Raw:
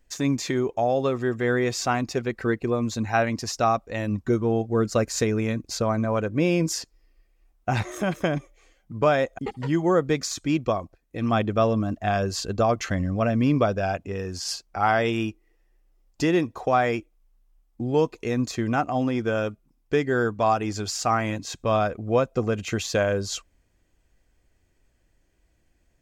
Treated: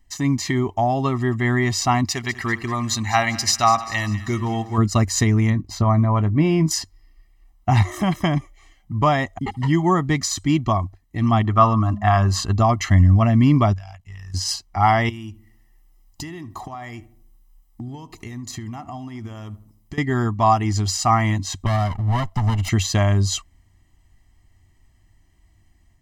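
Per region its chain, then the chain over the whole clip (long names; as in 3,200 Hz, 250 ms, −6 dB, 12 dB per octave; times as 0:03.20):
0:02.05–0:04.78: tilt shelving filter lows −7.5 dB, about 870 Hz + echo with a time of its own for lows and highs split 1,300 Hz, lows 83 ms, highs 197 ms, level −15 dB
0:05.50–0:06.71: parametric band 8,400 Hz −10.5 dB 2.5 octaves + double-tracking delay 20 ms −13.5 dB
0:11.44–0:12.53: parametric band 1,200 Hz +11 dB 1.3 octaves + hum removal 204.6 Hz, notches 6
0:13.73–0:14.34: amplitude modulation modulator 56 Hz, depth 60% + guitar amp tone stack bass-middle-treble 10-0-10 + downward compressor 3 to 1, threshold −45 dBFS
0:15.09–0:19.98: high-shelf EQ 6,800 Hz +10.5 dB + downward compressor 12 to 1, threshold −35 dBFS + feedback echo with a low-pass in the loop 75 ms, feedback 51%, low-pass 1,400 Hz, level −15.5 dB
0:21.66–0:22.69: lower of the sound and its delayed copy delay 1.4 ms + downward compressor 2 to 1, threshold −26 dBFS
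whole clip: parametric band 94 Hz +9 dB 0.35 octaves; comb filter 1 ms, depth 96%; automatic gain control gain up to 3 dB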